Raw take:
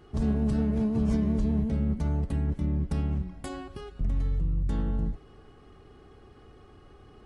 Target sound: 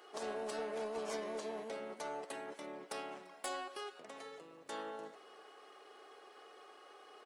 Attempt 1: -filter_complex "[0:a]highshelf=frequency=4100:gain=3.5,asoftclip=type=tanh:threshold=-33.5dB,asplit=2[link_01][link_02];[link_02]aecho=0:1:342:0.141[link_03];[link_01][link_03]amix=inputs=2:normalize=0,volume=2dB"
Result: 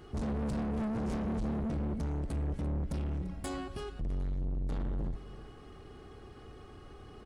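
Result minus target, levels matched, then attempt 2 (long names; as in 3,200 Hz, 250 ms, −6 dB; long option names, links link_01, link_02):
500 Hz band −8.5 dB; echo-to-direct +8 dB
-filter_complex "[0:a]highpass=frequency=480:width=0.5412,highpass=frequency=480:width=1.3066,highshelf=frequency=4100:gain=3.5,asoftclip=type=tanh:threshold=-33.5dB,asplit=2[link_01][link_02];[link_02]aecho=0:1:342:0.0562[link_03];[link_01][link_03]amix=inputs=2:normalize=0,volume=2dB"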